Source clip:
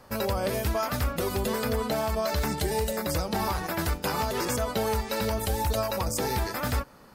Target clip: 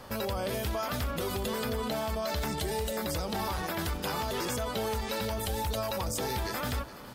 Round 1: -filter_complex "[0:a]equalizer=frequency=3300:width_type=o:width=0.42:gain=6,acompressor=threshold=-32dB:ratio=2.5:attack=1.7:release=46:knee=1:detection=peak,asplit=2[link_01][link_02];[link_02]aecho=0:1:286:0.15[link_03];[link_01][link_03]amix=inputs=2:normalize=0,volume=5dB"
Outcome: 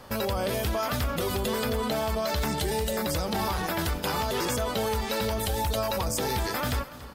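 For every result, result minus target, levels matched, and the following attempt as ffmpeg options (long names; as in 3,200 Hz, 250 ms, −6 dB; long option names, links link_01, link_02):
echo 133 ms early; downward compressor: peak gain reduction −4 dB
-filter_complex "[0:a]equalizer=frequency=3300:width_type=o:width=0.42:gain=6,acompressor=threshold=-32dB:ratio=2.5:attack=1.7:release=46:knee=1:detection=peak,asplit=2[link_01][link_02];[link_02]aecho=0:1:419:0.15[link_03];[link_01][link_03]amix=inputs=2:normalize=0,volume=5dB"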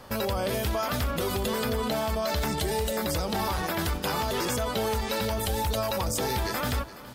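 downward compressor: peak gain reduction −4 dB
-filter_complex "[0:a]equalizer=frequency=3300:width_type=o:width=0.42:gain=6,acompressor=threshold=-39dB:ratio=2.5:attack=1.7:release=46:knee=1:detection=peak,asplit=2[link_01][link_02];[link_02]aecho=0:1:419:0.15[link_03];[link_01][link_03]amix=inputs=2:normalize=0,volume=5dB"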